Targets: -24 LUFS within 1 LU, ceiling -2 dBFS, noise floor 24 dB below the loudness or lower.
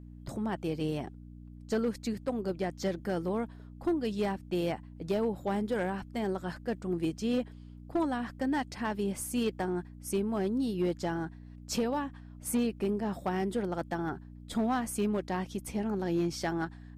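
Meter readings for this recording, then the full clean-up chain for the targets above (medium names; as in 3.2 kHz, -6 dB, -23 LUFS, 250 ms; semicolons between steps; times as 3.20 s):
clipped samples 0.9%; clipping level -23.0 dBFS; hum 60 Hz; highest harmonic 300 Hz; hum level -46 dBFS; loudness -33.5 LUFS; peak level -23.0 dBFS; loudness target -24.0 LUFS
-> clip repair -23 dBFS; de-hum 60 Hz, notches 5; trim +9.5 dB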